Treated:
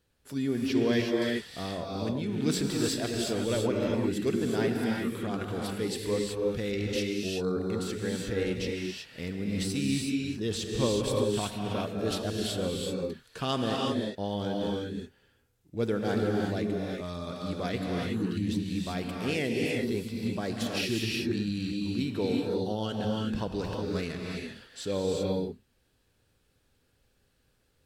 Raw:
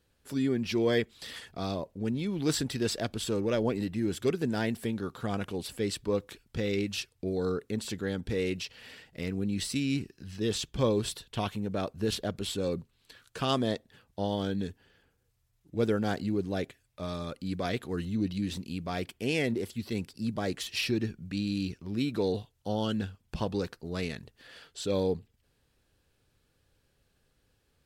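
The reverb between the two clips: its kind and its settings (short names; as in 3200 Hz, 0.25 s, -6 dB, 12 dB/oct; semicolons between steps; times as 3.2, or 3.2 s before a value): non-linear reverb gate 0.4 s rising, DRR -1 dB; gain -2 dB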